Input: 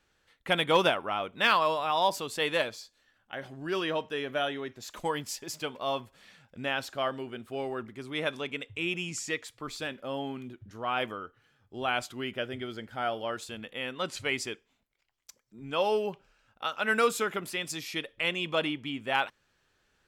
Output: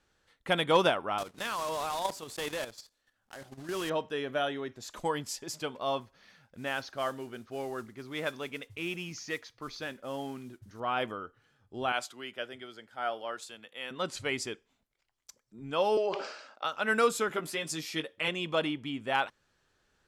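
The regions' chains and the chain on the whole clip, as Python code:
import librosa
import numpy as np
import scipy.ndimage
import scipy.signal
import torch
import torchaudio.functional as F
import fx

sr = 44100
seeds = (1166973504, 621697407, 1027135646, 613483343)

y = fx.chain(x, sr, fx.block_float(bits=3),
    fx.level_steps(step_db=11), at=(1.18, 3.91))
y = fx.chain(y, sr, fx.cheby_ripple(hz=6500.0, ripple_db=3),
    fx.mod_noise(seeds[0], snr_db=20), at=(6.0, 10.8))
y = fx.chain(y, sr, fx.highpass(hz=710.0, slope=6),
    fx.band_widen(depth_pct=40), at=(11.92, 13.91))
y = fx.chain(y, sr, fx.cabinet(low_hz=290.0, low_slope=24, high_hz=7700.0, hz=(620.0, 1200.0, 2100.0, 4700.0), db=(8, 4, 4, 10)),
    fx.sustainer(db_per_s=58.0), at=(15.97, 16.65))
y = fx.chain(y, sr, fx.highpass(hz=120.0, slope=12),
    fx.doubler(ms=13.0, db=-4.5), at=(17.29, 18.28))
y = scipy.signal.sosfilt(scipy.signal.butter(2, 12000.0, 'lowpass', fs=sr, output='sos'), y)
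y = fx.peak_eq(y, sr, hz=2500.0, db=-4.0, octaves=1.0)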